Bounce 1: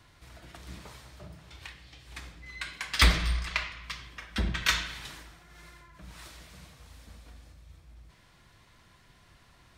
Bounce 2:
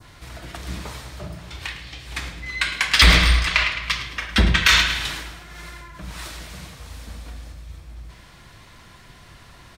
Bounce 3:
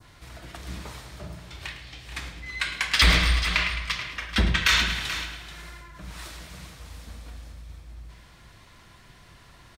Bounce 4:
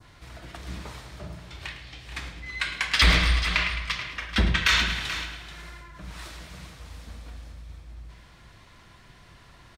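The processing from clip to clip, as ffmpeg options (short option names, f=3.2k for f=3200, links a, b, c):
-af "adynamicequalizer=threshold=0.00501:dfrequency=2700:dqfactor=0.75:tfrequency=2700:tqfactor=0.75:attack=5:release=100:ratio=0.375:range=2:mode=boostabove:tftype=bell,aecho=1:1:107|214|321|428:0.2|0.0858|0.0369|0.0159,alimiter=level_in=13.5dB:limit=-1dB:release=50:level=0:latency=1,volume=-1dB"
-af "aecho=1:1:433:0.251,volume=-5.5dB"
-af "highshelf=f=8.2k:g=-7"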